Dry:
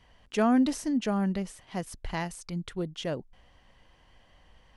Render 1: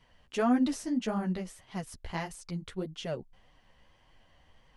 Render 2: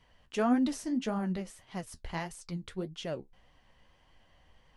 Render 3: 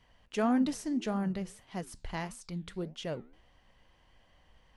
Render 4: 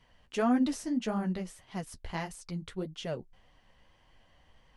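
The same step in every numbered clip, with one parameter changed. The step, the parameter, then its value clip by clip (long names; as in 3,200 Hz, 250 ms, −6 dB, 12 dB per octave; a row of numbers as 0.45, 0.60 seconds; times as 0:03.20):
flanger, regen: −2, +48, −83, −25%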